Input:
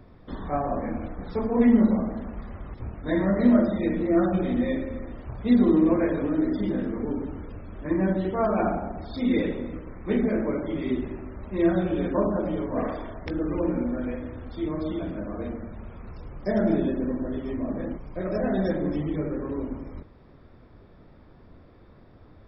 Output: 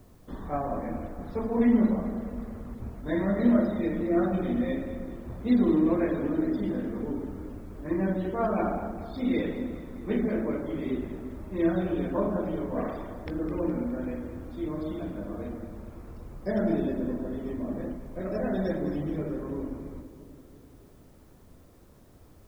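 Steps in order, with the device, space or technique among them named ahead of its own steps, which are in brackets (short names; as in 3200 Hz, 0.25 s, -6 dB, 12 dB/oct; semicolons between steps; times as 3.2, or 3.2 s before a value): plain cassette with noise reduction switched in (mismatched tape noise reduction decoder only; wow and flutter 25 cents; white noise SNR 39 dB); split-band echo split 560 Hz, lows 0.339 s, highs 0.208 s, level -12.5 dB; gain -3.5 dB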